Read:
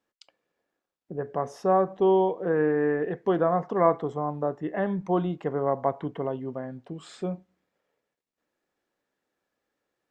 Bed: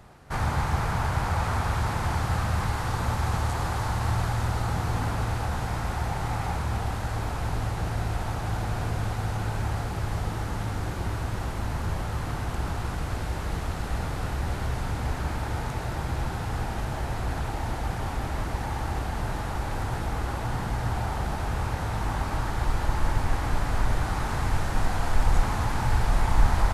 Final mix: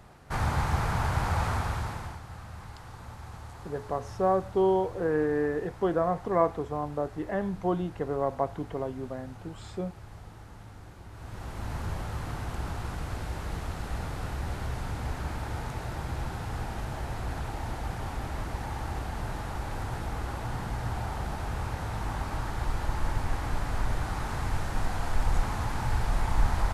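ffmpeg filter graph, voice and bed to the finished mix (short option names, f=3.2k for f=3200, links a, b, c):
-filter_complex "[0:a]adelay=2550,volume=-3dB[a];[1:a]volume=11dB,afade=t=out:st=1.44:d=0.76:silence=0.16788,afade=t=in:st=11.11:d=0.64:silence=0.237137[b];[a][b]amix=inputs=2:normalize=0"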